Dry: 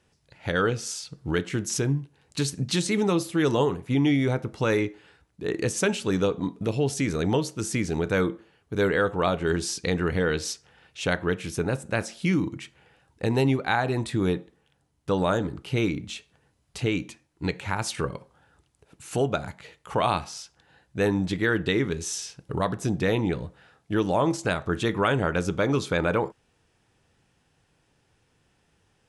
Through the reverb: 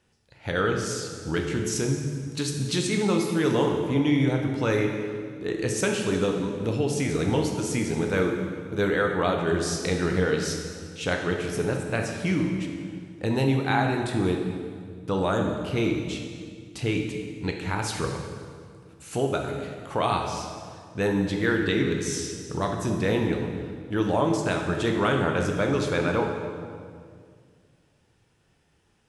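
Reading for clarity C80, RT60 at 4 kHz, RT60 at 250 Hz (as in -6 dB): 5.5 dB, 1.6 s, 2.5 s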